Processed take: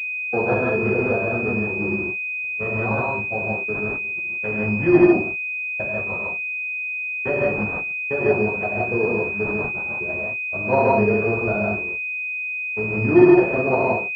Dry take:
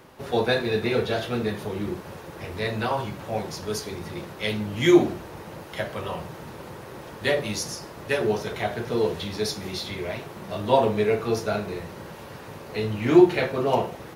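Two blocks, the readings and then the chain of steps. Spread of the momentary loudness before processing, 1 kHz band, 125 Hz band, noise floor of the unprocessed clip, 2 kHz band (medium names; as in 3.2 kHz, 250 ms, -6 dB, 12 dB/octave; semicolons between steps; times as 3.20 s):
20 LU, +3.0 dB, +3.5 dB, -42 dBFS, +11.5 dB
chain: gate -30 dBFS, range -43 dB; gated-style reverb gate 190 ms rising, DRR -2.5 dB; class-D stage that switches slowly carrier 2.5 kHz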